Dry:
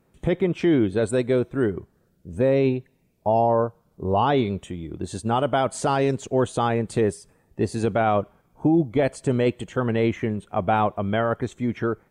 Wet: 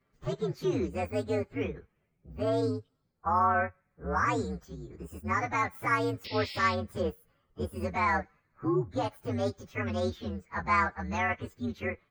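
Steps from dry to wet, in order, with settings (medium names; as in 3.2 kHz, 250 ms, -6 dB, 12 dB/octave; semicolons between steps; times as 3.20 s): frequency axis rescaled in octaves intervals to 127%; high-order bell 1.6 kHz +8.5 dB 1.3 oct; painted sound noise, 6.24–6.75 s, 1.9–5.5 kHz -34 dBFS; trim -8 dB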